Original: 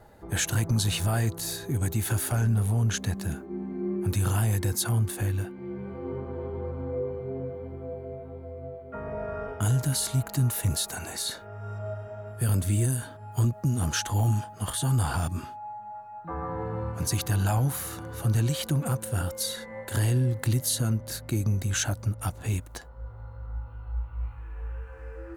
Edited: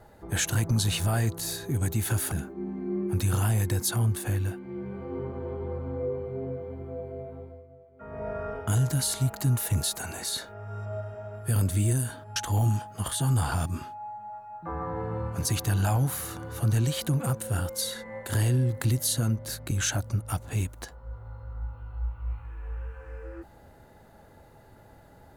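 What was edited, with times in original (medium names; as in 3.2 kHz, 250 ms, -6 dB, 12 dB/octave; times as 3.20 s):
2.32–3.25 s: delete
8.29–9.20 s: dip -13 dB, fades 0.31 s
13.29–13.98 s: delete
21.33–21.64 s: delete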